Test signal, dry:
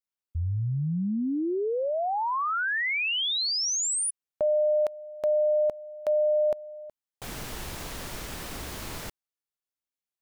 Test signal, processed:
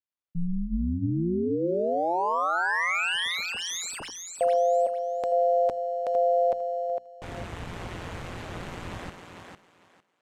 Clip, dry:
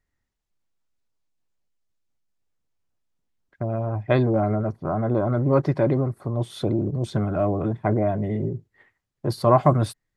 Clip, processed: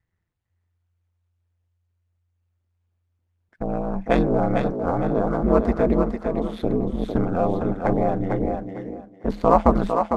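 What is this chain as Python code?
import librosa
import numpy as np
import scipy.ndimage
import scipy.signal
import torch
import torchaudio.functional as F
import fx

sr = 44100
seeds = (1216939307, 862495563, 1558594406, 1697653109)

y = scipy.ndimage.median_filter(x, 9, mode='constant')
y = scipy.signal.sosfilt(scipy.signal.butter(2, 8600.0, 'lowpass', fs=sr, output='sos'), y)
y = fx.hum_notches(y, sr, base_hz=60, count=3)
y = y * np.sin(2.0 * np.pi * 87.0 * np.arange(len(y)) / sr)
y = fx.echo_thinned(y, sr, ms=453, feedback_pct=22, hz=220.0, wet_db=-5.0)
y = y * librosa.db_to_amplitude(4.0)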